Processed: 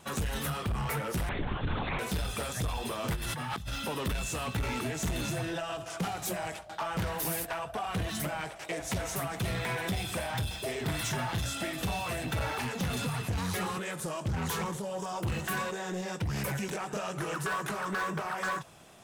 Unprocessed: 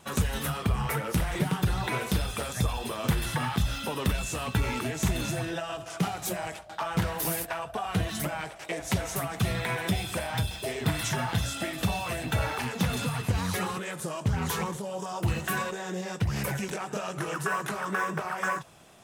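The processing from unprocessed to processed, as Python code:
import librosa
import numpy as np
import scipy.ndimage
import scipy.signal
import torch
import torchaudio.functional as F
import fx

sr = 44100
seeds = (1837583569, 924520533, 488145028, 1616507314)

y = fx.over_compress(x, sr, threshold_db=-34.0, ratio=-1.0, at=(3.15, 3.71), fade=0.02)
y = 10.0 ** (-27.0 / 20.0) * np.tanh(y / 10.0 ** (-27.0 / 20.0))
y = fx.lpc_vocoder(y, sr, seeds[0], excitation='whisper', order=10, at=(1.29, 1.99))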